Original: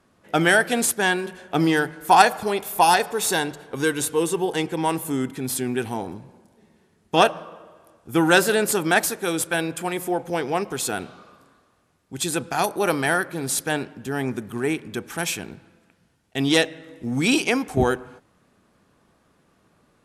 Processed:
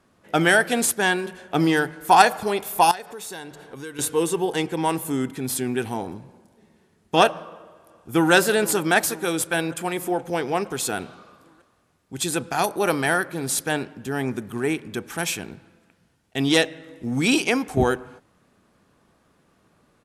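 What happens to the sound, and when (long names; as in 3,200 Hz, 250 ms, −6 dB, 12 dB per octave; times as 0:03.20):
0:02.91–0:03.99: downward compressor 2.5 to 1, threshold −39 dBFS
0:07.43–0:08.32: delay throw 470 ms, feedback 65%, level −16.5 dB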